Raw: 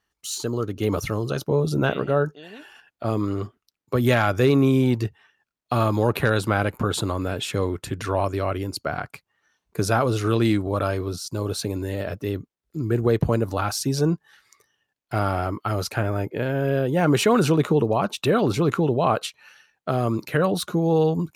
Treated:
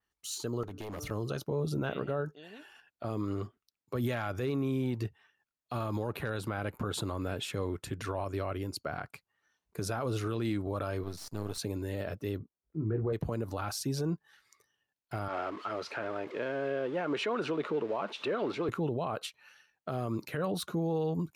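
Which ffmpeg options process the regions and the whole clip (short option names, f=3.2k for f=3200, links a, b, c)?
-filter_complex "[0:a]asettb=1/sr,asplit=3[a][b][c];[a]atrim=end=0.634[d];[b]atrim=start=0.63:end=1.11,asetpts=PTS-STARTPTS,afade=t=in:d=0.004:c=qsin,afade=t=out:st=0.476:d=0.004:c=qsin,bandreject=f=148:t=h:w=4,bandreject=f=296:t=h:w=4,bandreject=f=444:t=h:w=4,bandreject=f=592:t=h:w=4,bandreject=f=740:t=h:w=4,bandreject=f=888:t=h:w=4,bandreject=f=1.036k:t=h:w=4,bandreject=f=1.184k:t=h:w=4,bandreject=f=1.332k:t=h:w=4,bandreject=f=1.48k:t=h:w=4,bandreject=f=1.628k:t=h:w=4,acompressor=threshold=-27dB:ratio=3:attack=3.2:release=140:knee=1:detection=peak,aeval=exprs='0.0501*(abs(mod(val(0)/0.0501+3,4)-2)-1)':c=same[e];[c]atrim=start=1.106[f];[d][e]acrossfade=d=0.004:c1=hsin:c2=qsin[g];[g][f]acrossfade=d=0.004:c1=qsin:c2=hsin,asettb=1/sr,asplit=3[h][i][j];[h]atrim=end=11.034[k];[i]atrim=start=11.03:end=11.58,asetpts=PTS-STARTPTS,afade=t=in:d=0.004:c=qsin,afade=t=out:st=0.546:d=0.004:c=qsin,aeval=exprs='if(lt(val(0),0),0.251*val(0),val(0))':c=same,bandreject=f=550:w=8.8[l];[j]atrim=start=11.576[m];[k][l]acrossfade=d=0.004:c1=hsin:c2=qsin[n];[n][m]acrossfade=d=0.004:c1=qsin:c2=hsin,asettb=1/sr,asplit=3[o][p][q];[o]atrim=end=12.384[r];[p]atrim=start=12.38:end=13.13,asetpts=PTS-STARTPTS,afade=t=in:d=0.004:c=qsin,afade=t=out:st=0.746:d=0.004:c=qsin,lowpass=1.3k,asplit=2[s][t];[t]adelay=19,volume=-5dB[u];[s][u]amix=inputs=2:normalize=0,atrim=end_sample=33075[v];[q]atrim=start=13.126[w];[r][v]acrossfade=d=0.004:c1=hsin:c2=qsin[x];[x][w]acrossfade=d=0.004:c1=qsin:c2=hsin,asettb=1/sr,asplit=3[y][z][aa];[y]atrim=end=15.284[ab];[z]atrim=start=15.28:end=18.69,asetpts=PTS-STARTPTS,afade=t=in:d=0.004:c=qsin,afade=t=out:st=3.406:d=0.004:c=qsin,aeval=exprs='val(0)+0.5*0.0251*sgn(val(0))':c=same,highpass=340,lowpass=3.5k,bandreject=f=770:w=11[ac];[aa]atrim=start=18.686[ad];[ab][ac]acrossfade=d=0.004:c1=hsin:c2=qsin[ae];[ae][ad]acrossfade=d=0.004:c1=qsin:c2=hsin,adynamicequalizer=threshold=0.00501:dfrequency=6700:dqfactor=0.99:tfrequency=6700:tqfactor=0.99:attack=5:release=100:ratio=0.375:range=2:mode=cutabove:tftype=bell,alimiter=limit=-15.5dB:level=0:latency=1:release=67,volume=-8dB"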